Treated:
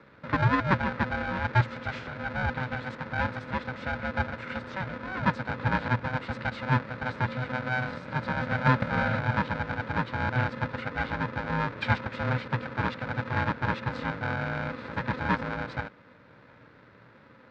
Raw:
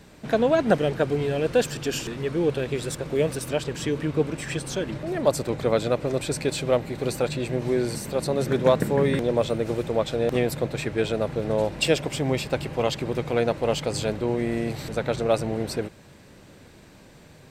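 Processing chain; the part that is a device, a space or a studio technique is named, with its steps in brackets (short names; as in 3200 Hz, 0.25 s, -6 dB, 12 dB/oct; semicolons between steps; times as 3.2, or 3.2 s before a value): ring modulator pedal into a guitar cabinet (polarity switched at an audio rate 380 Hz; speaker cabinet 80–3400 Hz, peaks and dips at 120 Hz +9 dB, 720 Hz -9 dB, 1500 Hz +7 dB, 3000 Hz -9 dB); gain -4.5 dB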